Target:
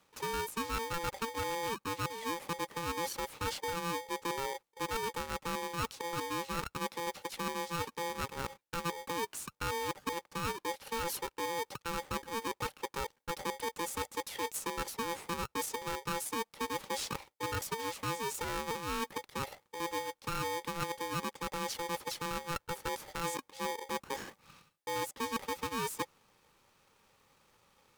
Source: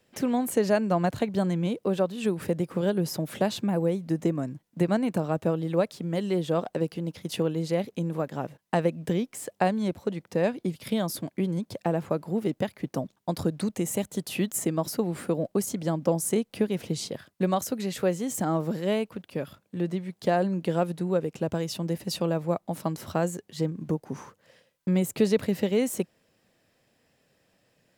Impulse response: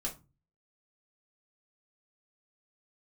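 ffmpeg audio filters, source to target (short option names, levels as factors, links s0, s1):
-af "areverse,acompressor=threshold=0.02:ratio=6,areverse,aeval=exprs='val(0)*sgn(sin(2*PI*680*n/s))':c=same"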